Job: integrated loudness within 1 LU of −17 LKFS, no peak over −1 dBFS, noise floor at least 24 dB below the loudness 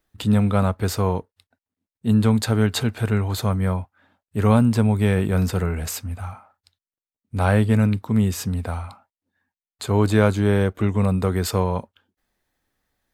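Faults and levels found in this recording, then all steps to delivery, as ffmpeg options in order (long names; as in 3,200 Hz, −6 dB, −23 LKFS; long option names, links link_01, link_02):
integrated loudness −21.5 LKFS; sample peak −2.5 dBFS; target loudness −17.0 LKFS
→ -af "volume=4.5dB,alimiter=limit=-1dB:level=0:latency=1"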